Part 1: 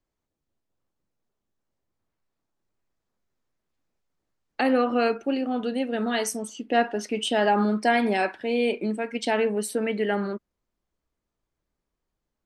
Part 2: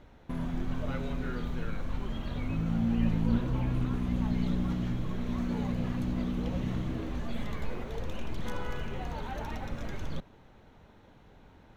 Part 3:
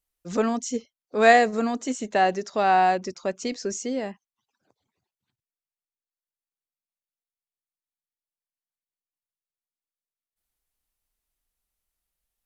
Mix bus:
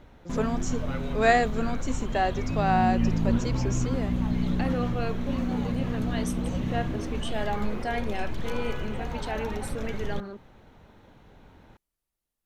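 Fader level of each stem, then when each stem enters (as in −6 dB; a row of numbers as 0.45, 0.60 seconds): −9.5, +3.0, −5.0 decibels; 0.00, 0.00, 0.00 seconds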